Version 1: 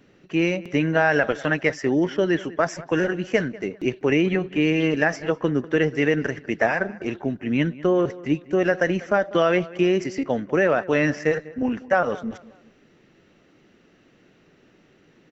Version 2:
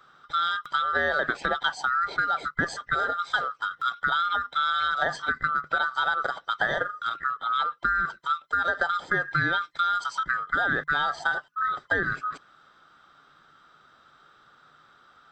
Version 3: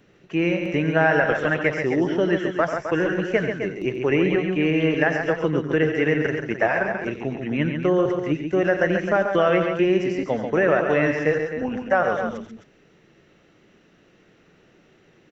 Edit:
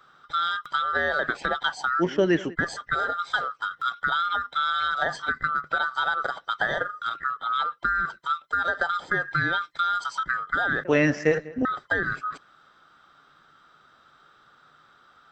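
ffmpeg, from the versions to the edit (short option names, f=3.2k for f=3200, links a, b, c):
-filter_complex "[0:a]asplit=2[a][b];[1:a]asplit=3[c][d][e];[c]atrim=end=2.03[f];[a]atrim=start=1.99:end=2.56[g];[d]atrim=start=2.52:end=10.852[h];[b]atrim=start=10.848:end=11.652[i];[e]atrim=start=11.648[j];[f][g]acrossfade=d=0.04:c1=tri:c2=tri[k];[k][h]acrossfade=d=0.04:c1=tri:c2=tri[l];[l][i]acrossfade=d=0.004:c1=hsin:c2=hsin[m];[m][j]acrossfade=d=0.004:c1=hsin:c2=hsin"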